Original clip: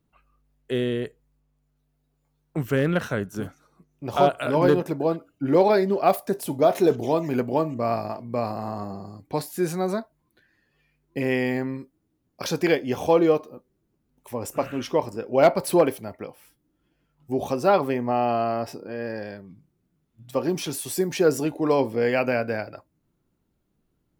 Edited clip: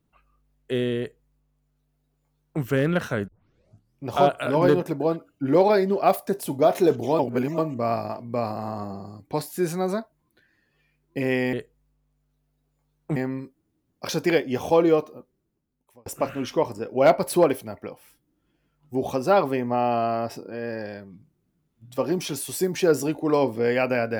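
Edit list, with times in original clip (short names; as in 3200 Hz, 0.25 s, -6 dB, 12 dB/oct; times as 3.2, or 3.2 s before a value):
0.99–2.62 copy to 11.53
3.28 tape start 0.77 s
7.19–7.58 reverse
13.52–14.43 fade out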